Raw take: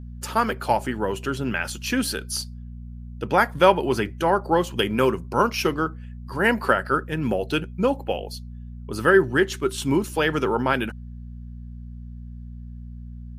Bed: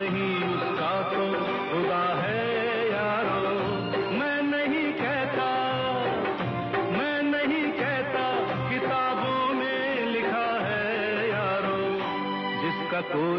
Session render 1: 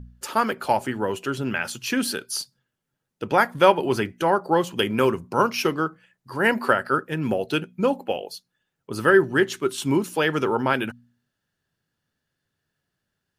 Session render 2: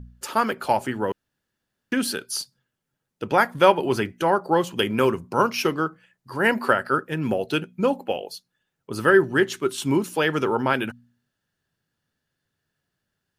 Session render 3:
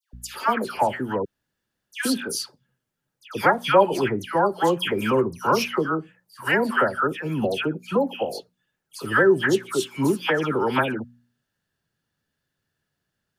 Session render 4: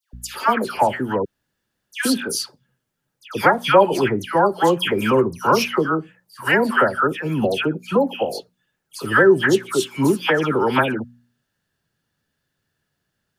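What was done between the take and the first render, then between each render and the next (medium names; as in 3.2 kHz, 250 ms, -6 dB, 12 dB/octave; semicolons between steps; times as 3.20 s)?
de-hum 60 Hz, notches 4
1.12–1.92 s: room tone
phase dispersion lows, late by 135 ms, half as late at 1.7 kHz
trim +4 dB; peak limiter -2 dBFS, peak gain reduction 2 dB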